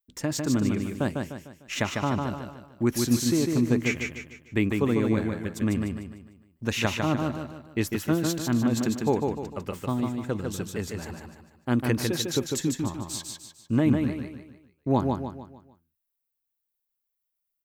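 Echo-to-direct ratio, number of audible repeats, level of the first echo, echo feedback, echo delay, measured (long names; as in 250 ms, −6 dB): −3.0 dB, 5, −4.0 dB, 41%, 150 ms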